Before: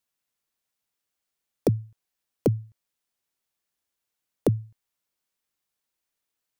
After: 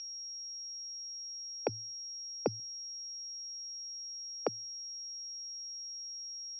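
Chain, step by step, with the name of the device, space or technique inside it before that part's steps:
0:01.69–0:02.60: bass and treble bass +11 dB, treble −15 dB
toy sound module (linearly interpolated sample-rate reduction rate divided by 4×; switching amplifier with a slow clock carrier 5,600 Hz; loudspeaker in its box 560–4,500 Hz, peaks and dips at 830 Hz +8 dB, 1,400 Hz +7 dB, 2,500 Hz +10 dB)
level −4.5 dB

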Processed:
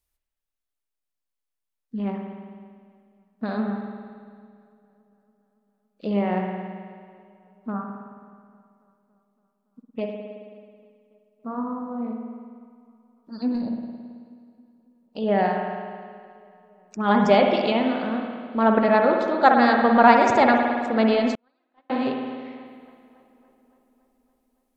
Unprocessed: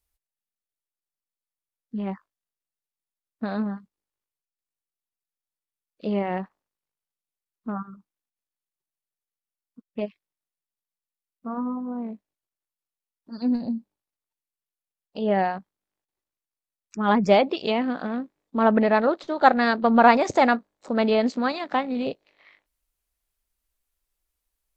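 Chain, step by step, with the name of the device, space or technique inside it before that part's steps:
dub delay into a spring reverb (feedback echo with a low-pass in the loop 282 ms, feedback 67%, low-pass 4,200 Hz, level −23 dB; spring reverb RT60 1.9 s, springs 54 ms, chirp 55 ms, DRR 2 dB)
0:21.35–0:21.90: noise gate −15 dBFS, range −46 dB

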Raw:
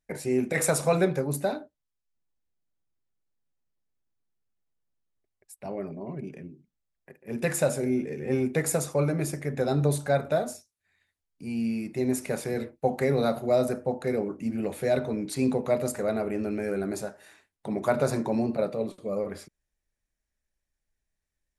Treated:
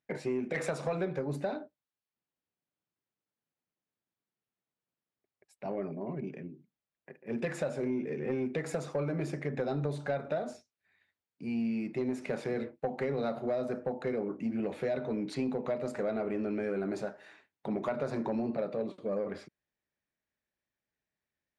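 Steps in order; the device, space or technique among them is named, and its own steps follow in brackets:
AM radio (band-pass filter 140–3,600 Hz; downward compressor 6 to 1, threshold −28 dBFS, peak gain reduction 10 dB; soft clipping −22 dBFS, distortion −22 dB)

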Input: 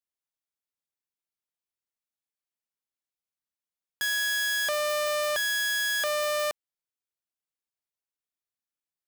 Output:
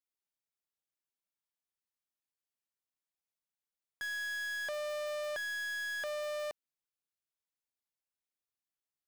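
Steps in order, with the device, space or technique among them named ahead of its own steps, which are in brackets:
saturation between pre-emphasis and de-emphasis (high-shelf EQ 8,200 Hz +9 dB; soft clipping −31 dBFS, distortion −5 dB; high-shelf EQ 8,200 Hz −9 dB)
level −4 dB

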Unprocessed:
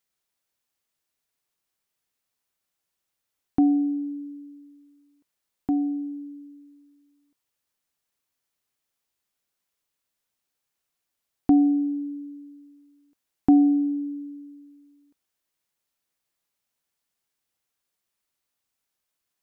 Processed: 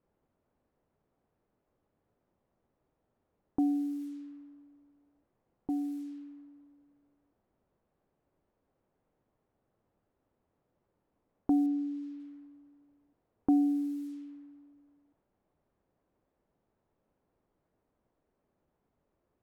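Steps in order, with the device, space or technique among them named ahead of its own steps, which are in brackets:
cassette deck with a dynamic noise filter (white noise bed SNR 25 dB; low-pass that shuts in the quiet parts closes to 500 Hz, open at −25 dBFS)
0:11.66–0:12.20: high-frequency loss of the air 130 metres
level −9 dB

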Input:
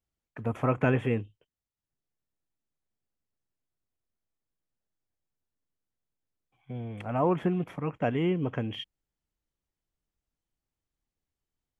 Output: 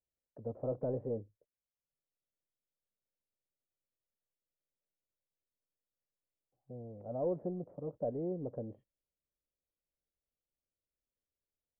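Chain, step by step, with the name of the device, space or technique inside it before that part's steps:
overdriven synthesiser ladder filter (soft clipping −21 dBFS, distortion −14 dB; transistor ladder low-pass 620 Hz, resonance 65%)
level −1 dB

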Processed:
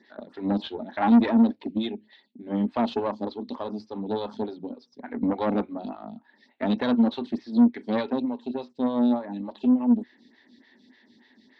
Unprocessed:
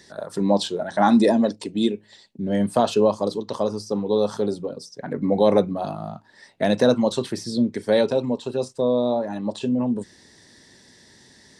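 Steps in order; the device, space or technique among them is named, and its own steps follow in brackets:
octave-band graphic EQ 250/500/2,000/4,000/8,000 Hz +11/+3/+8/+9/+9 dB
vibe pedal into a guitar amplifier (phaser with staggered stages 3.4 Hz; tube saturation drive 10 dB, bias 0.65; loudspeaker in its box 79–3,600 Hz, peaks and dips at 100 Hz −5 dB, 150 Hz −9 dB, 240 Hz +7 dB, 500 Hz −5 dB, 870 Hz +5 dB)
level −7.5 dB

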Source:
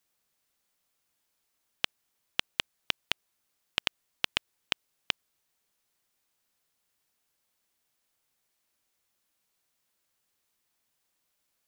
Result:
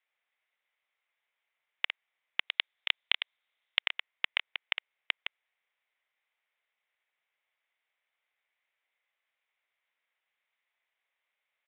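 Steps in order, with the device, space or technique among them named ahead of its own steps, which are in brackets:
delay that plays each chunk backwards 144 ms, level −7 dB
0:02.47–0:03.82: parametric band 3,600 Hz +8.5 dB 0.49 octaves
musical greeting card (downsampling to 8,000 Hz; high-pass filter 510 Hz 24 dB per octave; parametric band 2,100 Hz +11 dB 0.48 octaves)
level −4.5 dB

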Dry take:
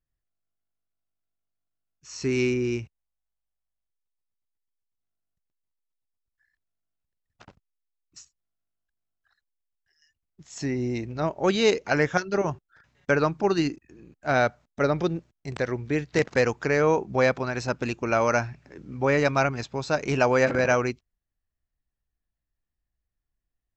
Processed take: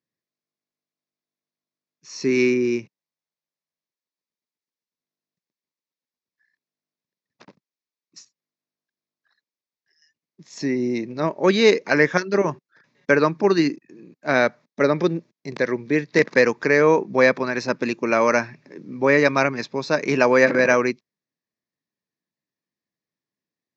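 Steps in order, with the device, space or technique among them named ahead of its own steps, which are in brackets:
low-pass filter 6,300 Hz 24 dB per octave
dynamic equaliser 1,600 Hz, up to +6 dB, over −39 dBFS, Q 1.2
television speaker (loudspeaker in its box 170–6,900 Hz, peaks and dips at 750 Hz −9 dB, 1,400 Hz −10 dB, 3,000 Hz −9 dB)
level +6 dB

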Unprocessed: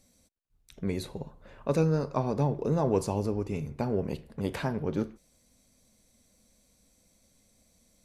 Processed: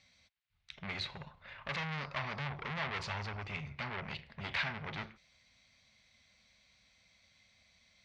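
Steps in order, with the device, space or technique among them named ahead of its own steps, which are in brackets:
scooped metal amplifier (tube saturation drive 36 dB, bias 0.6; loudspeaker in its box 100–4,000 Hz, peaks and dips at 280 Hz +6 dB, 470 Hz −6 dB, 2,100 Hz +6 dB; guitar amp tone stack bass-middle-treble 10-0-10)
level +13.5 dB

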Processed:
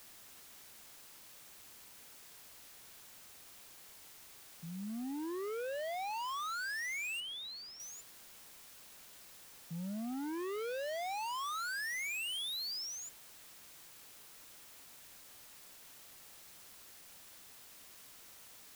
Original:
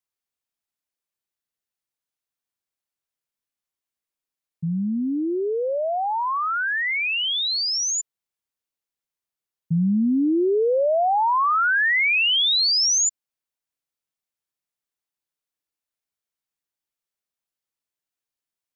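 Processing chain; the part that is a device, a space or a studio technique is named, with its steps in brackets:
aircraft radio (band-pass filter 380–2,300 Hz; hard clipping −32 dBFS, distortion −5 dB; white noise bed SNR 12 dB)
0:07.20–0:07.80: high-shelf EQ 4,900 Hz −12 dB
level −6.5 dB

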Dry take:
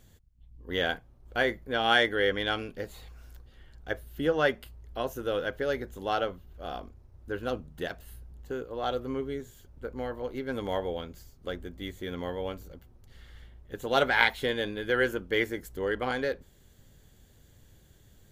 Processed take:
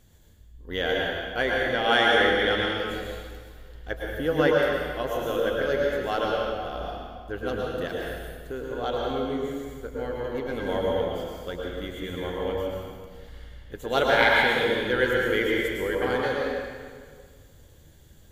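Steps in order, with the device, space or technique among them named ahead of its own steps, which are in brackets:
stairwell (convolution reverb RT60 1.8 s, pre-delay 101 ms, DRR −3 dB)

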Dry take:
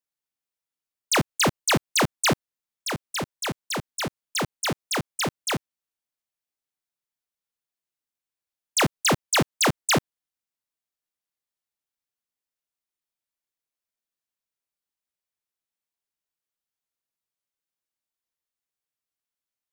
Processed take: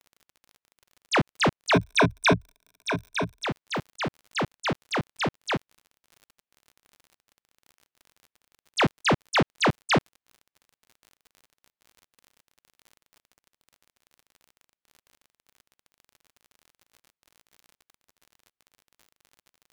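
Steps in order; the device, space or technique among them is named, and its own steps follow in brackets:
lo-fi chain (low-pass filter 3,400 Hz 12 dB per octave; tape wow and flutter; surface crackle 47 per second −40 dBFS)
0:01.73–0:03.45: EQ curve with evenly spaced ripples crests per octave 1.6, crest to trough 14 dB

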